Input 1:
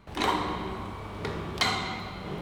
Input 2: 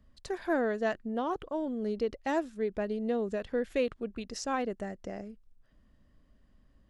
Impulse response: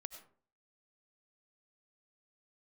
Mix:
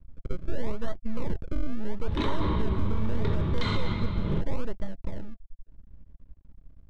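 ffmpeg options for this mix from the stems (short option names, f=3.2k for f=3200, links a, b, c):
-filter_complex "[0:a]alimiter=limit=-16.5dB:level=0:latency=1:release=155,equalizer=f=3.6k:t=o:w=0.34:g=8.5,adelay=2000,volume=-1dB[a];[1:a]adynamicequalizer=threshold=0.00891:dfrequency=460:dqfactor=2.1:tfrequency=460:tqfactor=2.1:attack=5:release=100:ratio=0.375:range=2:mode=cutabove:tftype=bell,acrusher=samples=33:mix=1:aa=0.000001:lfo=1:lforange=33:lforate=0.78,aeval=exprs='max(val(0),0)':c=same,volume=0.5dB[b];[a][b]amix=inputs=2:normalize=0,asuperstop=centerf=740:order=12:qfactor=6.3,aemphasis=mode=reproduction:type=riaa,alimiter=limit=-16dB:level=0:latency=1:release=37"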